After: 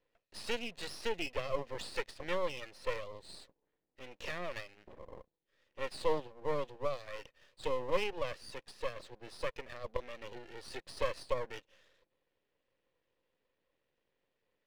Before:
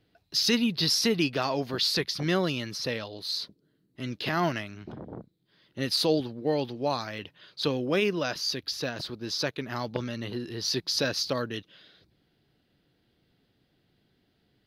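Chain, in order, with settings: vowel filter e; half-wave rectifier; trim +5.5 dB

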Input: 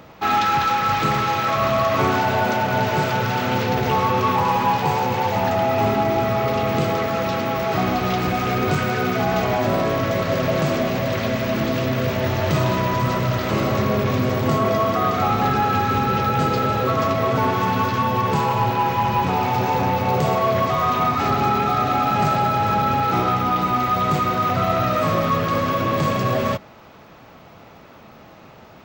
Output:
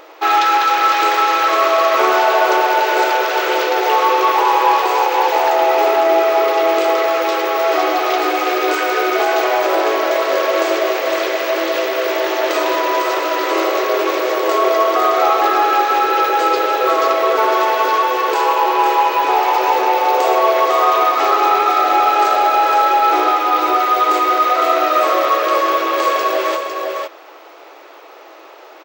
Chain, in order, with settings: brick-wall FIR high-pass 300 Hz; delay 504 ms -5.5 dB; trim +5.5 dB

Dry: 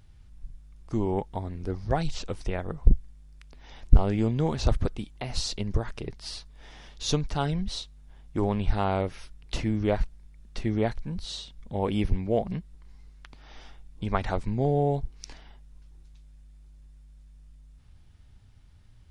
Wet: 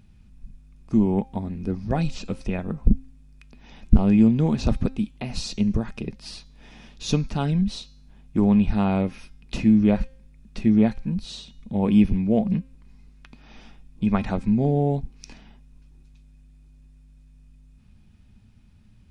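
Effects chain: de-hum 264.3 Hz, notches 29; small resonant body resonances 210/2500 Hz, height 15 dB, ringing for 45 ms; trim -1 dB

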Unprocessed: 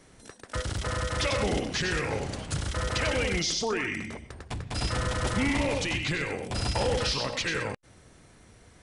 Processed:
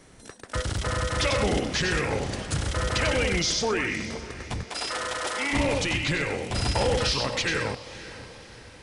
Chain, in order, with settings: 4.63–5.53 s: Bessel high-pass 520 Hz, order 8; echo that smears into a reverb 547 ms, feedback 48%, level -15.5 dB; trim +3 dB

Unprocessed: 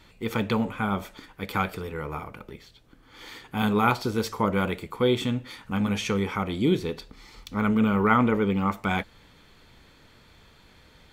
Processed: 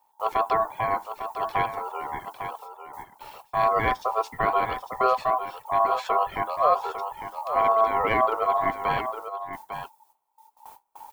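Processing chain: RIAA curve playback; added noise blue -56 dBFS; gate with hold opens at -31 dBFS; treble shelf 7.2 kHz +6.5 dB; reverb removal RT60 1.6 s; in parallel at -7 dB: saturation -16.5 dBFS, distortion -12 dB; on the sum: ring modulator 890 Hz; delay 851 ms -9.5 dB; trim -3.5 dB

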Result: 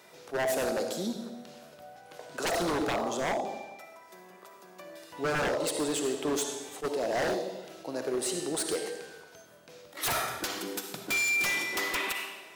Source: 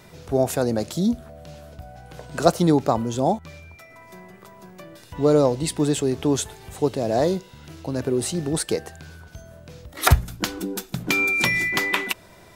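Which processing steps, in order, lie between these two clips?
high-pass 370 Hz 12 dB/octave; algorithmic reverb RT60 1.1 s, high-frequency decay 0.95×, pre-delay 20 ms, DRR 4 dB; wavefolder -19 dBFS; attacks held to a fixed rise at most 390 dB/s; trim -4.5 dB

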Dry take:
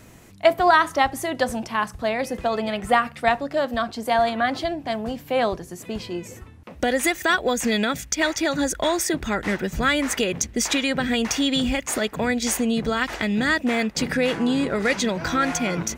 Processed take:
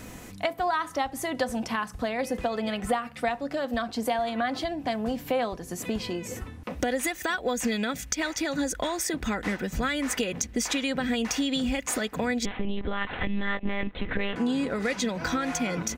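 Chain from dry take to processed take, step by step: compression 4:1, threshold -33 dBFS, peak gain reduction 18 dB; 12.45–14.36 s: monotone LPC vocoder at 8 kHz 200 Hz; comb 4 ms, depth 31%; trim +5 dB

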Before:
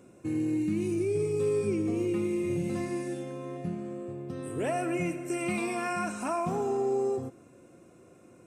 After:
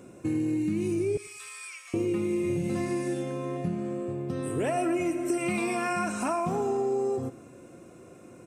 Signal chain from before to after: 1.17–1.94 s: inverse Chebyshev high-pass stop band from 300 Hz, stop band 70 dB; 4.77–5.38 s: comb 3.1 ms, depth 77%; compression 3:1, threshold -32 dBFS, peak gain reduction 7.5 dB; feedback delay 102 ms, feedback 37%, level -22 dB; trim +6 dB

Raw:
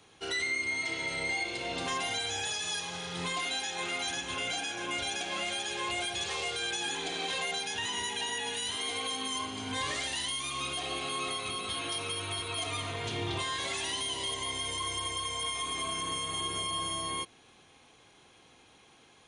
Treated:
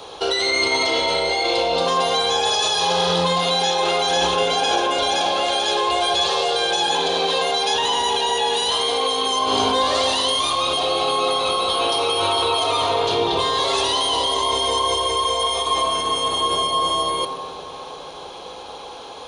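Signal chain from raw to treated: graphic EQ 125/250/500/1000/2000/4000/8000 Hz -10/-7/+9/+7/-11/+8/-8 dB; in parallel at +1 dB: compressor with a negative ratio -38 dBFS, ratio -0.5; on the sum: reverberation RT60 3.6 s, pre-delay 3 ms, DRR 4.5 dB; trim +8.5 dB

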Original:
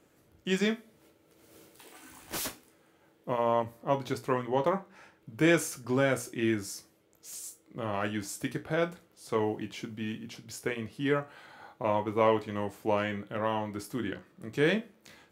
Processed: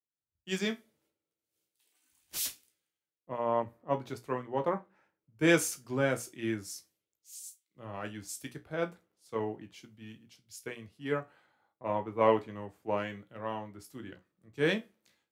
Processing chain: three bands expanded up and down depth 100%; trim -6 dB

